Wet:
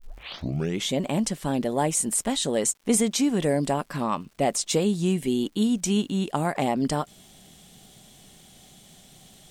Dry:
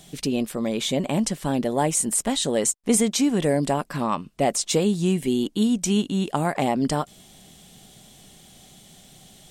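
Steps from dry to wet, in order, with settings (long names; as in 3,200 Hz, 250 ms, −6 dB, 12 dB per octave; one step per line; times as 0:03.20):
turntable start at the beginning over 0.89 s
surface crackle 170 per second −45 dBFS
level −2 dB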